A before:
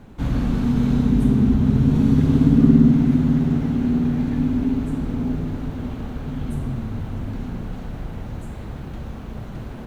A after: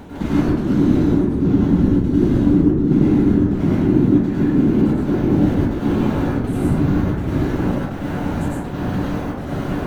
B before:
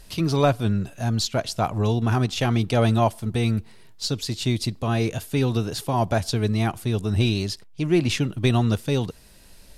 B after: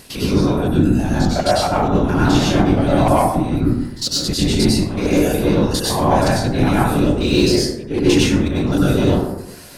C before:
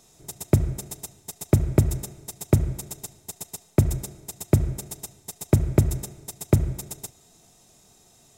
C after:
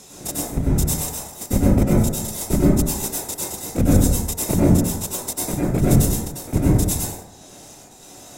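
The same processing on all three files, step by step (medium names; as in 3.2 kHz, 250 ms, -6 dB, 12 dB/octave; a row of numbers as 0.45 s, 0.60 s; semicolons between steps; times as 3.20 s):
spectrogram pixelated in time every 50 ms; reverb removal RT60 0.92 s; high-pass 110 Hz 12 dB/octave; band-stop 1.2 kHz, Q 29; reverse; compression 8:1, threshold -30 dBFS; reverse; trance gate "xxxxx..xx" 184 bpm -12 dB; overload inside the chain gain 26 dB; whisper effect; plate-style reverb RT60 0.91 s, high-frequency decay 0.4×, pre-delay 85 ms, DRR -6.5 dB; peak normalisation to -1.5 dBFS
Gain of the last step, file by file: +10.5 dB, +13.0 dB, +13.5 dB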